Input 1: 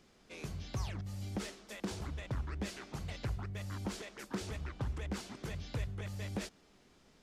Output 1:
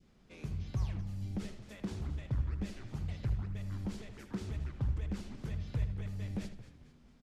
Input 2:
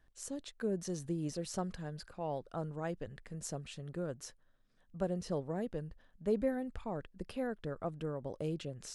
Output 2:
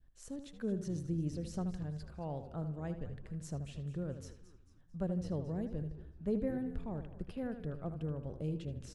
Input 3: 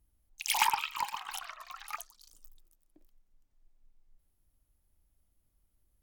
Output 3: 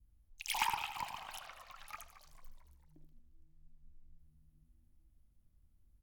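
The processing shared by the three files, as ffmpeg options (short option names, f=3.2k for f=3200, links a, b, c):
-filter_complex "[0:a]bass=f=250:g=10,treble=f=4k:g=-4,asplit=2[a][b];[b]asplit=4[c][d][e][f];[c]adelay=223,afreqshift=-85,volume=-14.5dB[g];[d]adelay=446,afreqshift=-170,volume=-21.4dB[h];[e]adelay=669,afreqshift=-255,volume=-28.4dB[i];[f]adelay=892,afreqshift=-340,volume=-35.3dB[j];[g][h][i][j]amix=inputs=4:normalize=0[k];[a][k]amix=inputs=2:normalize=0,adynamicequalizer=threshold=0.00251:dfrequency=1200:dqfactor=0.81:tfrequency=1200:tqfactor=0.81:attack=5:release=100:ratio=0.375:range=2:mode=cutabove:tftype=bell,asplit=2[l][m];[m]adelay=78,lowpass=f=3.6k:p=1,volume=-9.5dB,asplit=2[n][o];[o]adelay=78,lowpass=f=3.6k:p=1,volume=0.38,asplit=2[p][q];[q]adelay=78,lowpass=f=3.6k:p=1,volume=0.38,asplit=2[r][s];[s]adelay=78,lowpass=f=3.6k:p=1,volume=0.38[t];[n][p][r][t]amix=inputs=4:normalize=0[u];[l][u]amix=inputs=2:normalize=0,volume=-5.5dB"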